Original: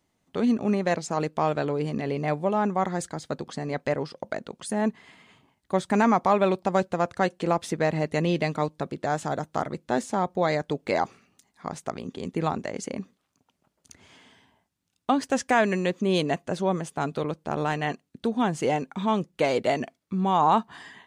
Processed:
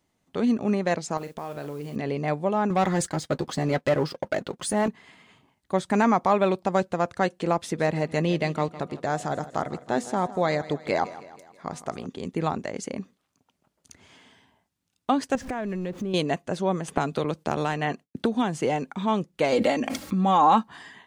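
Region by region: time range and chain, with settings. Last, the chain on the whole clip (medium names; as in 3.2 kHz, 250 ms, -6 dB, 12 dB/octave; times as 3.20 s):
1.17–1.96 s: doubling 41 ms -11 dB + modulation noise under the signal 24 dB + compression 4:1, threshold -32 dBFS
2.70–4.88 s: waveshaping leveller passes 2 + comb of notches 230 Hz
7.58–12.06 s: de-hum 243.7 Hz, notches 5 + de-esser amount 60% + feedback delay 159 ms, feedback 53%, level -16.5 dB
15.35–16.14 s: jump at every zero crossing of -36.5 dBFS + tilt EQ -2.5 dB/octave + compression 2.5:1, threshold -32 dBFS
16.88–18.93 s: expander -57 dBFS + three bands compressed up and down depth 100%
19.52–20.69 s: comb 3.7 ms, depth 68% + swell ahead of each attack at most 23 dB/s
whole clip: none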